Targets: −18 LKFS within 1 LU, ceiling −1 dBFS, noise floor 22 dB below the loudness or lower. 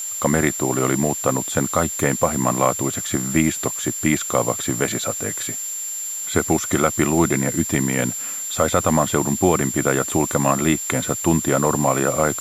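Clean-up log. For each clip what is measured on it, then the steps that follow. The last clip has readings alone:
interfering tone 7,300 Hz; level of the tone −26 dBFS; background noise floor −29 dBFS; target noise floor −42 dBFS; integrated loudness −20.0 LKFS; sample peak −3.0 dBFS; target loudness −18.0 LKFS
→ notch filter 7,300 Hz, Q 30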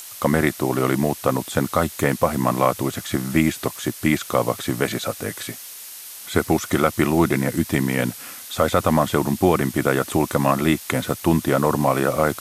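interfering tone none found; background noise floor −38 dBFS; target noise floor −44 dBFS
→ noise reduction from a noise print 6 dB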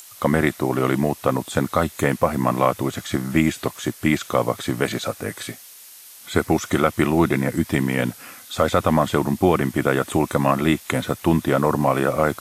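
background noise floor −44 dBFS; integrated loudness −21.5 LKFS; sample peak −3.5 dBFS; target loudness −18.0 LKFS
→ level +3.5 dB
brickwall limiter −1 dBFS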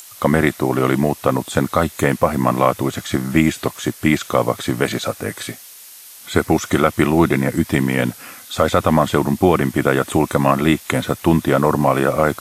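integrated loudness −18.0 LKFS; sample peak −1.0 dBFS; background noise floor −40 dBFS

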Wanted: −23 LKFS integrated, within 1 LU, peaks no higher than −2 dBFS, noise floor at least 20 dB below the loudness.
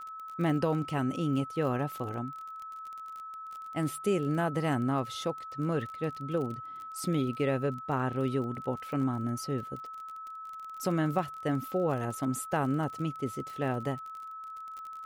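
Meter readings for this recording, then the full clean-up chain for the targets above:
crackle rate 31 per second; interfering tone 1,300 Hz; level of the tone −40 dBFS; integrated loudness −33.0 LKFS; sample peak −16.0 dBFS; target loudness −23.0 LKFS
→ click removal
notch filter 1,300 Hz, Q 30
level +10 dB

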